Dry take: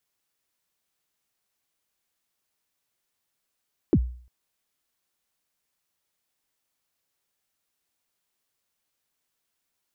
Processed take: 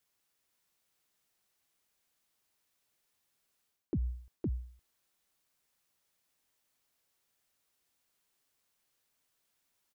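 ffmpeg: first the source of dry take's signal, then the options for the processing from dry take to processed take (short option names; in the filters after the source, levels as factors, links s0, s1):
-f lavfi -i "aevalsrc='0.237*pow(10,-3*t/0.49)*sin(2*PI*(410*0.058/log(61/410)*(exp(log(61/410)*min(t,0.058)/0.058)-1)+61*max(t-0.058,0)))':d=0.35:s=44100"
-af "aecho=1:1:512:0.473,areverse,acompressor=threshold=0.0251:ratio=6,areverse"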